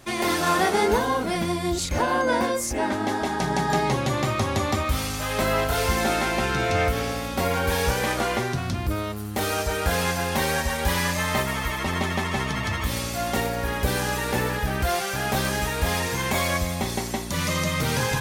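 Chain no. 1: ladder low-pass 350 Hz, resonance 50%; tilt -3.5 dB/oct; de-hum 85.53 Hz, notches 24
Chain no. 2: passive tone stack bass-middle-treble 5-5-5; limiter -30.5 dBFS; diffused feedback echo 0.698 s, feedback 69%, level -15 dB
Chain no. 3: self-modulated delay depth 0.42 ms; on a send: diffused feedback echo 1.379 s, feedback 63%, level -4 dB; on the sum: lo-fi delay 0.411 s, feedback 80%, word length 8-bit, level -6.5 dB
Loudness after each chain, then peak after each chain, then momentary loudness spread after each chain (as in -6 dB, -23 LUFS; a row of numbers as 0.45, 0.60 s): -28.0, -39.0, -21.5 LUFS; -8.5, -28.5, -6.5 dBFS; 4, 2, 2 LU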